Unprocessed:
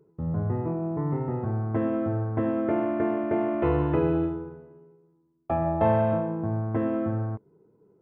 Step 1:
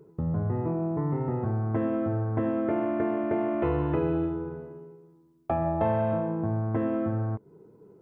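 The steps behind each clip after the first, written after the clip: compressor 2:1, threshold -39 dBFS, peak gain reduction 12 dB; gain +7.5 dB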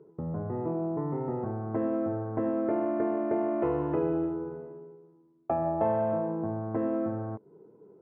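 band-pass 530 Hz, Q 0.57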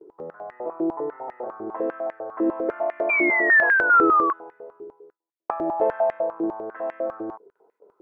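gate with hold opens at -46 dBFS; painted sound fall, 3.09–4.33, 1100–2400 Hz -23 dBFS; stepped high-pass 10 Hz 350–1900 Hz

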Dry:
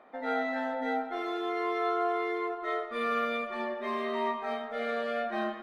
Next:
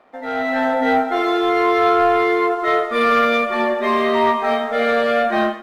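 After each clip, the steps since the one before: sample leveller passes 1; AGC gain up to 10.5 dB; gain +1.5 dB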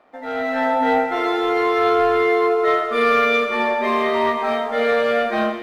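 FDN reverb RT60 2.7 s, high-frequency decay 0.95×, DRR 7 dB; gain -2.5 dB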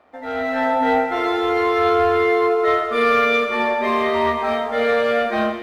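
bell 78 Hz +14 dB 0.46 oct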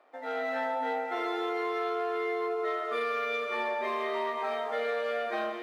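HPF 310 Hz 24 dB/oct; compressor, threshold -22 dBFS, peak gain reduction 9 dB; gain -6.5 dB

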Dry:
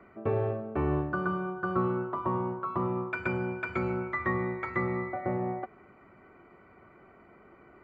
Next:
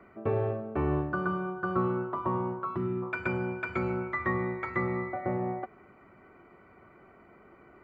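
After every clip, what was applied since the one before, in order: spectral gain 2.76–3.03, 460–1300 Hz -14 dB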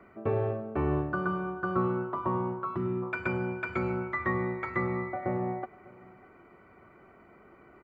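echo 0.598 s -23 dB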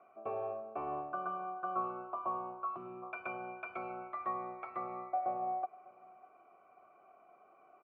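vowel filter a; gain +3.5 dB

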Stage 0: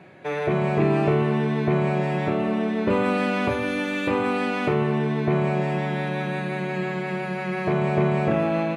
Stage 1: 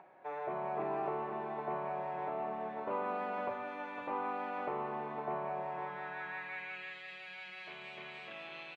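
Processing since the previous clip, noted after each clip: upward compressor, threshold -40 dBFS; band-pass sweep 870 Hz -> 3300 Hz, 5.66–7.01; echo 0.507 s -8 dB; gain -6 dB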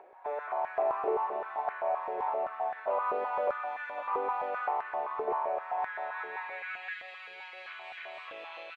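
stepped high-pass 7.7 Hz 440–1600 Hz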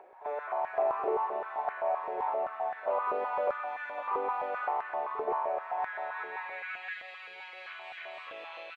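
reverse echo 44 ms -16 dB

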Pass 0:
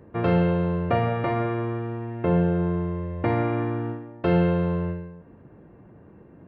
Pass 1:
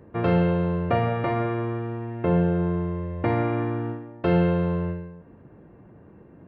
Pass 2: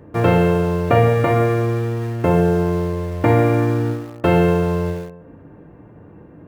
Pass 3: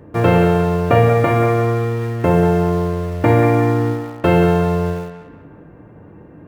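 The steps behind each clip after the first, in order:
nothing audible
FDN reverb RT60 0.84 s, low-frequency decay 0.8×, high-frequency decay 0.5×, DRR 6.5 dB; in parallel at -11.5 dB: bit-crush 6-bit; on the sum: gain +5.5 dB
narrowing echo 0.185 s, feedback 45%, band-pass 1500 Hz, level -5.5 dB; gain +1.5 dB

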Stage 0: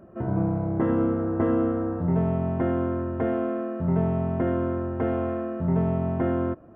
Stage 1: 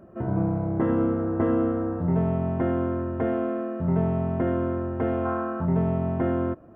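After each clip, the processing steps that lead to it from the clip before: spectral gain 5.25–5.65, 690–1700 Hz +10 dB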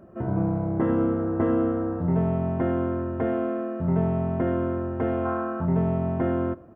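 echo 97 ms -23 dB

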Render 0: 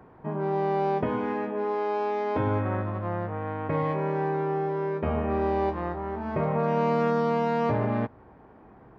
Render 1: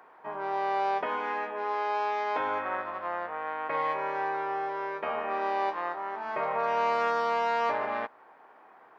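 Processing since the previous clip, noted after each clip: HPF 860 Hz 12 dB/oct; gain +4.5 dB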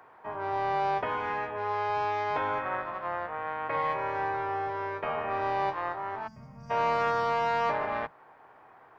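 octaver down 2 oct, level -5 dB; spectral gain 6.28–6.7, 270–4600 Hz -27 dB

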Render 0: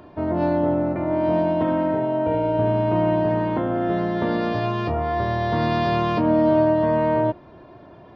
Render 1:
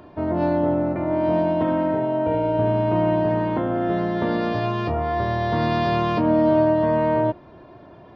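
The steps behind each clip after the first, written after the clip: nothing audible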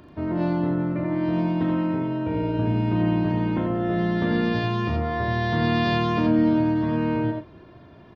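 bell 710 Hz -9 dB 1.6 oct; doubler 39 ms -12 dB; echo 86 ms -4.5 dB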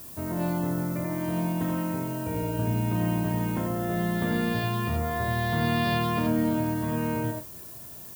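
bell 320 Hz -6 dB 0.49 oct; added noise violet -41 dBFS; gain -2.5 dB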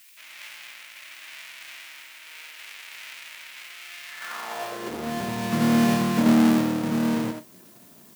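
half-waves squared off; high-pass sweep 2300 Hz -> 210 Hz, 4.06–5.12; upward expander 1.5:1, over -30 dBFS; gain -2 dB

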